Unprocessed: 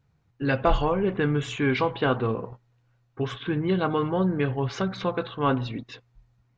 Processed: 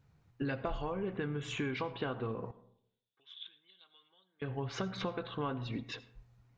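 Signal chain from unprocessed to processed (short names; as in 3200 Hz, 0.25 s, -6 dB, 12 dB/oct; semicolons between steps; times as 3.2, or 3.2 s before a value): compressor 12:1, threshold -33 dBFS, peak gain reduction 17.5 dB; 2.51–4.42 band-pass 3500 Hz, Q 10; reverb RT60 0.70 s, pre-delay 40 ms, DRR 16 dB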